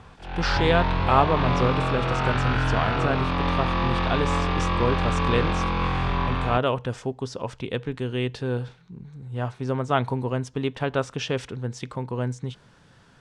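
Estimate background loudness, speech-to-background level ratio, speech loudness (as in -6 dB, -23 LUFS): -25.0 LUFS, -2.5 dB, -27.5 LUFS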